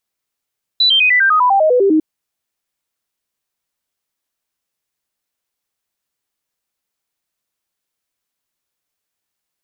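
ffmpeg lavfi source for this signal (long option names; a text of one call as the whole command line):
ffmpeg -f lavfi -i "aevalsrc='0.376*clip(min(mod(t,0.1),0.1-mod(t,0.1))/0.005,0,1)*sin(2*PI*3970*pow(2,-floor(t/0.1)/3)*mod(t,0.1))':duration=1.2:sample_rate=44100" out.wav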